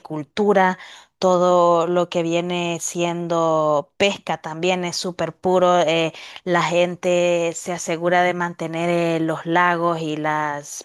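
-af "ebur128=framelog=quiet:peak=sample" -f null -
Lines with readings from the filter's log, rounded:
Integrated loudness:
  I:         -19.9 LUFS
  Threshold: -30.0 LUFS
Loudness range:
  LRA:         1.8 LU
  Threshold: -40.1 LUFS
  LRA low:   -21.0 LUFS
  LRA high:  -19.2 LUFS
Sample peak:
  Peak:       -2.6 dBFS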